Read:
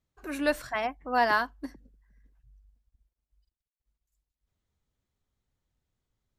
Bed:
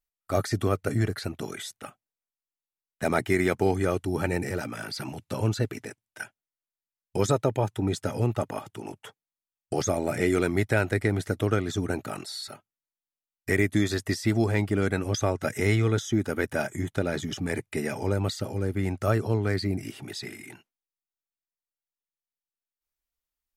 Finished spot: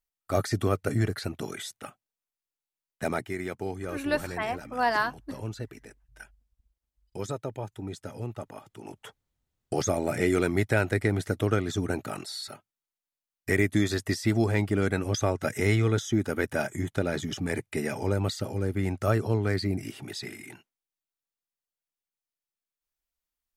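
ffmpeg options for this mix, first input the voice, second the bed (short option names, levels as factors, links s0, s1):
-filter_complex "[0:a]adelay=3650,volume=0.891[s0];[1:a]volume=2.82,afade=t=out:st=2.92:d=0.37:silence=0.334965,afade=t=in:st=8.69:d=0.4:silence=0.334965[s1];[s0][s1]amix=inputs=2:normalize=0"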